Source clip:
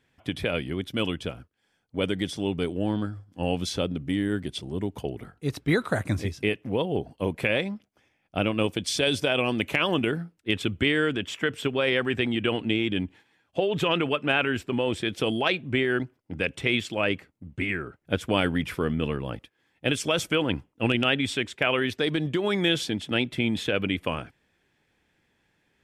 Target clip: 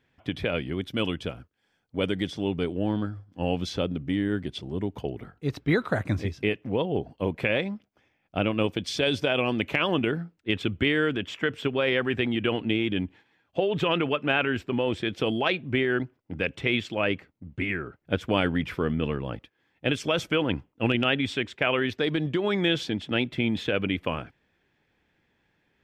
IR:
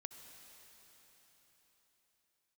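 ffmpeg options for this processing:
-af "asetnsamples=nb_out_samples=441:pad=0,asendcmd='0.73 equalizer g -7;2.27 equalizer g -14',equalizer=frequency=10000:width=0.84:gain=-13.5"

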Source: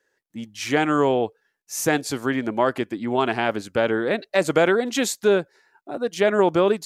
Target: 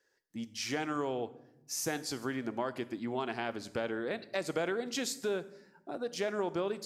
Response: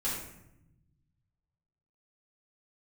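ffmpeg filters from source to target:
-filter_complex "[0:a]equalizer=frequency=5000:width=2.7:gain=7.5,acompressor=threshold=-33dB:ratio=2,asplit=2[link_01][link_02];[1:a]atrim=start_sample=2205,asetrate=39690,aresample=44100,highshelf=frequency=8100:gain=10[link_03];[link_02][link_03]afir=irnorm=-1:irlink=0,volume=-19.5dB[link_04];[link_01][link_04]amix=inputs=2:normalize=0,volume=-6dB"

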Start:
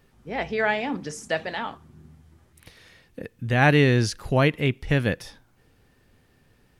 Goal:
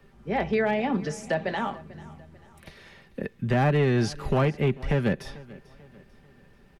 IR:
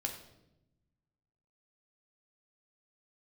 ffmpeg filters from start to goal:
-filter_complex "[0:a]highshelf=frequency=4200:gain=-11,aecho=1:1:5.1:0.45,acrossover=split=260|970[link_01][link_02][link_03];[link_01]acompressor=threshold=-27dB:ratio=4[link_04];[link_02]acompressor=threshold=-28dB:ratio=4[link_05];[link_03]acompressor=threshold=-35dB:ratio=4[link_06];[link_04][link_05][link_06]amix=inputs=3:normalize=0,acrossover=split=120|1500[link_07][link_08][link_09];[link_09]alimiter=level_in=6dB:limit=-24dB:level=0:latency=1:release=140,volume=-6dB[link_10];[link_07][link_08][link_10]amix=inputs=3:normalize=0,volume=20.5dB,asoftclip=hard,volume=-20.5dB,aecho=1:1:442|884|1326:0.0944|0.0397|0.0167,volume=4dB"

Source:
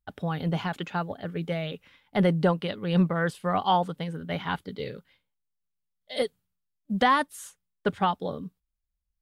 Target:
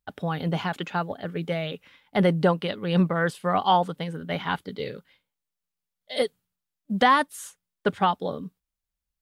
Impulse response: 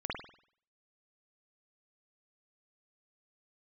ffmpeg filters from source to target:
-af "lowshelf=frequency=97:gain=-9.5,volume=3dB"

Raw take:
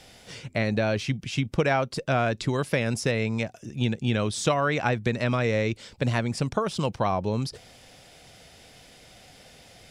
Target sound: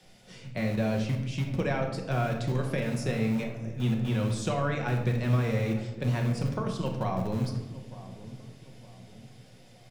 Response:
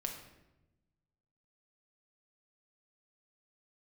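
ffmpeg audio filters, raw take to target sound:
-filter_complex "[0:a]lowshelf=frequency=290:gain=7.5,bandreject=frequency=50:width_type=h:width=6,bandreject=frequency=100:width_type=h:width=6,bandreject=frequency=150:width_type=h:width=6,bandreject=frequency=200:width_type=h:width=6,acrossover=split=110|850|1500[link_01][link_02][link_03][link_04];[link_01]acrusher=bits=6:dc=4:mix=0:aa=0.000001[link_05];[link_05][link_02][link_03][link_04]amix=inputs=4:normalize=0,asplit=2[link_06][link_07];[link_07]adelay=911,lowpass=frequency=880:poles=1,volume=-15dB,asplit=2[link_08][link_09];[link_09]adelay=911,lowpass=frequency=880:poles=1,volume=0.49,asplit=2[link_10][link_11];[link_11]adelay=911,lowpass=frequency=880:poles=1,volume=0.49,asplit=2[link_12][link_13];[link_13]adelay=911,lowpass=frequency=880:poles=1,volume=0.49,asplit=2[link_14][link_15];[link_15]adelay=911,lowpass=frequency=880:poles=1,volume=0.49[link_16];[link_06][link_08][link_10][link_12][link_14][link_16]amix=inputs=6:normalize=0[link_17];[1:a]atrim=start_sample=2205[link_18];[link_17][link_18]afir=irnorm=-1:irlink=0,volume=-8dB"

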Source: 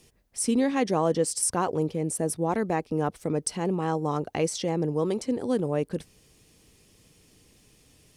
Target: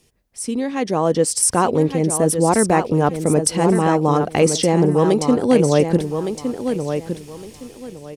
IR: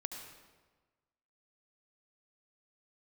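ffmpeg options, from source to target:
-af "dynaudnorm=framelen=690:gausssize=3:maxgain=16dB,aecho=1:1:1163|2326|3489:0.422|0.097|0.0223,volume=-1dB"

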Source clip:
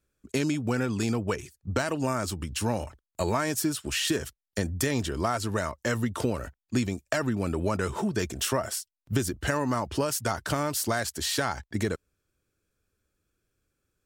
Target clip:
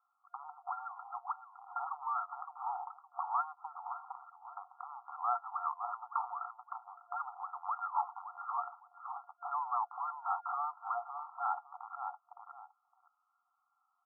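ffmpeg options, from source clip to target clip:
ffmpeg -i in.wav -filter_complex "[0:a]asplit=2[link_01][link_02];[link_02]adelay=563,lowpass=frequency=920:poles=1,volume=-12dB,asplit=2[link_03][link_04];[link_04]adelay=563,lowpass=frequency=920:poles=1,volume=0.19[link_05];[link_01][link_03][link_05]amix=inputs=3:normalize=0,acompressor=threshold=-37dB:ratio=5,aresample=16000,volume=35dB,asoftclip=hard,volume=-35dB,aresample=44100,afftfilt=real='re*between(b*sr/4096,700,1400)':imag='im*between(b*sr/4096,700,1400)':win_size=4096:overlap=0.75,volume=13dB" out.wav

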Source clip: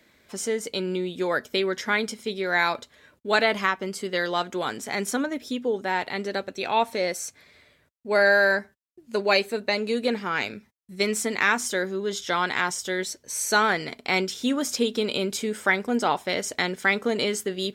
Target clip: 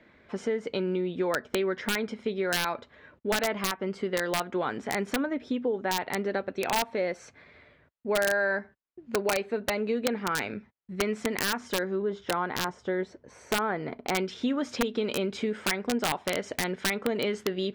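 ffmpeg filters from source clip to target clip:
ffmpeg -i in.wav -af "asetnsamples=nb_out_samples=441:pad=0,asendcmd='12.02 lowpass f 1200;14.15 lowpass f 2600',lowpass=2100,acompressor=threshold=-30dB:ratio=3,aeval=exprs='(mod(11.9*val(0)+1,2)-1)/11.9':channel_layout=same,volume=3.5dB" out.wav

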